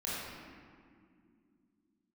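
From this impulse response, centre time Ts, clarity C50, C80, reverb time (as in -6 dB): 0.135 s, -4.0 dB, -1.0 dB, 2.4 s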